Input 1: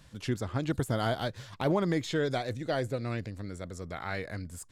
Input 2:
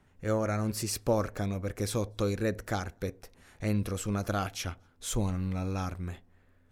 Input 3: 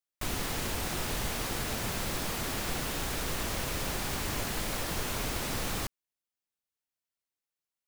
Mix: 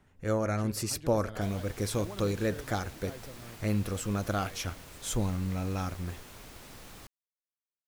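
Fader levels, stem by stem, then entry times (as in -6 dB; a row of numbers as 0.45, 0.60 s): -15.5, 0.0, -15.5 dB; 0.35, 0.00, 1.20 s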